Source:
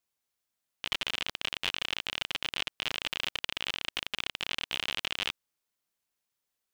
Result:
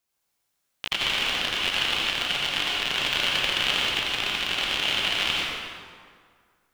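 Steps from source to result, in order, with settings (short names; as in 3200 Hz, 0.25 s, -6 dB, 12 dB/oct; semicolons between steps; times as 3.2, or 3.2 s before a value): 3.02–3.78 harmonic-percussive split harmonic +5 dB; reverb RT60 2.0 s, pre-delay 72 ms, DRR -5 dB; gain +3.5 dB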